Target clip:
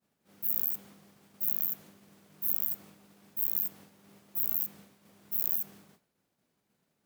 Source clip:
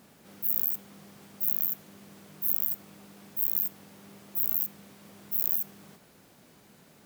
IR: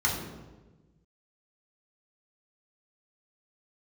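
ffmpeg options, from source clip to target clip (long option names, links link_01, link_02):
-af "agate=range=-33dB:threshold=-45dB:ratio=3:detection=peak,volume=-2.5dB"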